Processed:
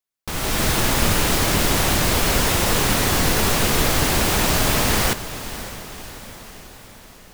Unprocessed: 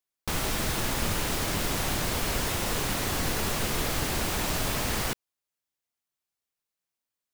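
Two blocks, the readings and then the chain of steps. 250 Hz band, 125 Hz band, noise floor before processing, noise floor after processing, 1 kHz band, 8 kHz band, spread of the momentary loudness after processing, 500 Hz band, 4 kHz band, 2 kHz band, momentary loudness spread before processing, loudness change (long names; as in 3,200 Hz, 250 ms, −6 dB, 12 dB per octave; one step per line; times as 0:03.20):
+10.0 dB, +9.5 dB, below −85 dBFS, −45 dBFS, +10.0 dB, +10.0 dB, 15 LU, +10.0 dB, +10.0 dB, +10.0 dB, 1 LU, +10.0 dB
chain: automatic gain control gain up to 10 dB
feedback delay with all-pass diffusion 569 ms, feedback 57%, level −13.5 dB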